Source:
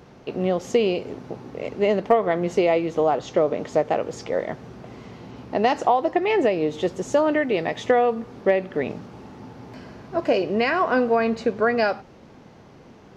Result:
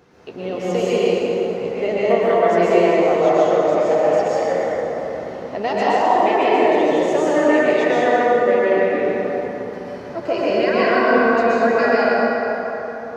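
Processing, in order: bin magnitudes rounded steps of 15 dB; low shelf 220 Hz -8.5 dB; plate-style reverb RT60 4.1 s, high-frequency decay 0.5×, pre-delay 0.105 s, DRR -9 dB; gain -2.5 dB

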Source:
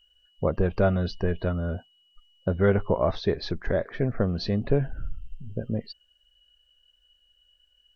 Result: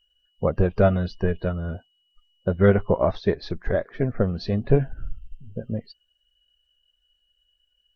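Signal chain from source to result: bin magnitudes rounded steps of 15 dB; upward expander 1.5:1, over -37 dBFS; gain +5.5 dB

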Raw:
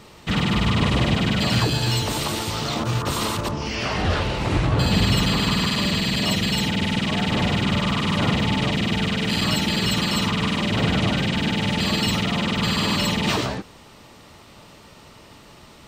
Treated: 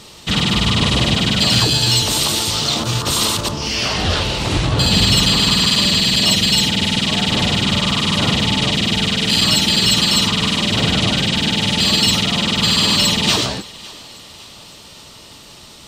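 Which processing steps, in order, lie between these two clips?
band shelf 6200 Hz +9.5 dB 2.4 oct; thinning echo 0.557 s, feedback 52%, level -21 dB; gain +2.5 dB

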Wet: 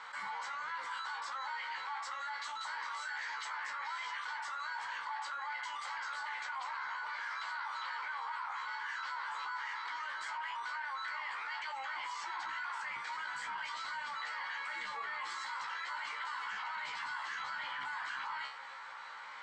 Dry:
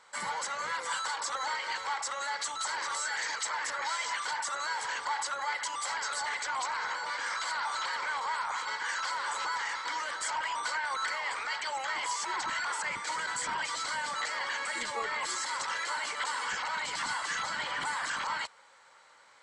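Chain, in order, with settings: LPF 3500 Hz 12 dB/oct; resonant low shelf 730 Hz -8 dB, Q 1.5; resonator 67 Hz, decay 0.18 s, harmonics all, mix 100%; fast leveller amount 70%; gain -5.5 dB

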